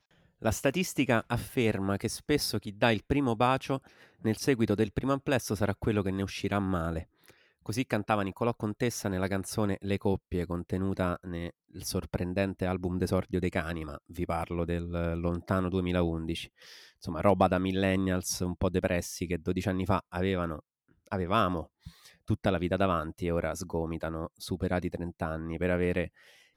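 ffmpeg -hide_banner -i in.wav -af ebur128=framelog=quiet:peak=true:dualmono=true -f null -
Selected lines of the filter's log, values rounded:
Integrated loudness:
  I:         -27.8 LUFS
  Threshold: -38.1 LUFS
Loudness range:
  LRA:         3.5 LU
  Threshold: -48.2 LUFS
  LRA low:   -29.7 LUFS
  LRA high:  -26.2 LUFS
True peak:
  Peak:      -10.7 dBFS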